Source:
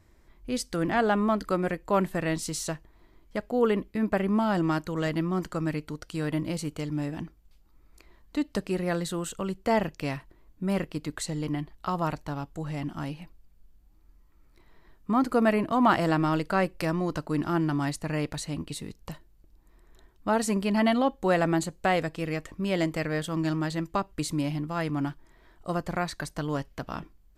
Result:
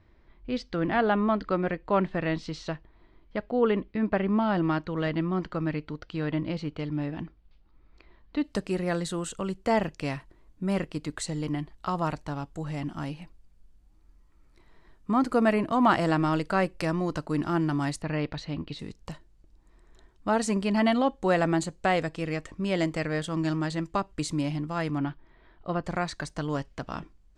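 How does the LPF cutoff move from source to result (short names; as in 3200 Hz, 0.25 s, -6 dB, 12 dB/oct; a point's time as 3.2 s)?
LPF 24 dB/oct
4200 Hz
from 8.44 s 10000 Hz
from 18.02 s 4500 Hz
from 18.79 s 9000 Hz
from 24.98 s 4000 Hz
from 25.84 s 8600 Hz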